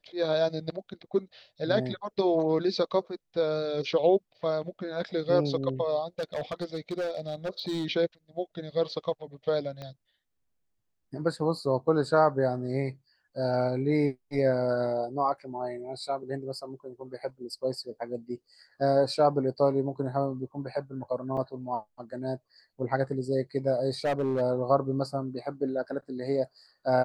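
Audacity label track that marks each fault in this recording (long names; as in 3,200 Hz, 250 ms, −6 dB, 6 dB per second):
6.190000	7.860000	clipping −27 dBFS
9.820000	9.820000	click −26 dBFS
21.370000	21.370000	drop-out 4.6 ms
24.050000	24.420000	clipping −23 dBFS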